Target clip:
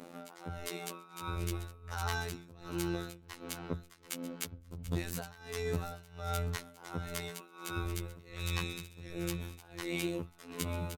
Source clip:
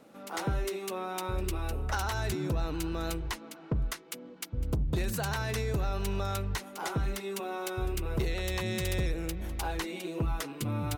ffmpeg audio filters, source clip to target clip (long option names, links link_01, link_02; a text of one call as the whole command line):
ffmpeg -i in.wav -filter_complex "[0:a]acompressor=threshold=-37dB:ratio=6,tremolo=f=1.4:d=0.92,afftfilt=real='hypot(re,im)*cos(PI*b)':imag='0':win_size=2048:overlap=0.75,asplit=2[link_01][link_02];[link_02]aecho=0:1:736:0.211[link_03];[link_01][link_03]amix=inputs=2:normalize=0,volume=10dB" out.wav